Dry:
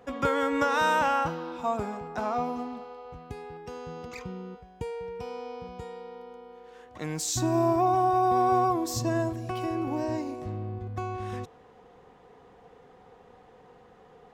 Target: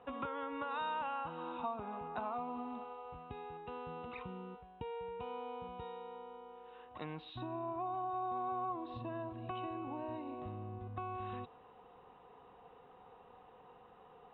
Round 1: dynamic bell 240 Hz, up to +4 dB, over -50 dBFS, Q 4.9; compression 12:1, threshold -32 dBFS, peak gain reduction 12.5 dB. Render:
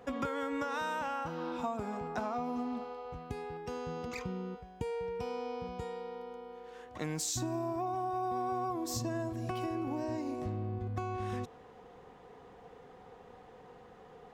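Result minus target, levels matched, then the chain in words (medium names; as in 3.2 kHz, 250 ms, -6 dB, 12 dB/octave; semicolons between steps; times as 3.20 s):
4 kHz band +2.5 dB
dynamic bell 240 Hz, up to +4 dB, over -50 dBFS, Q 4.9; compression 12:1, threshold -32 dBFS, peak gain reduction 12.5 dB; rippled Chebyshev low-pass 3.9 kHz, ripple 9 dB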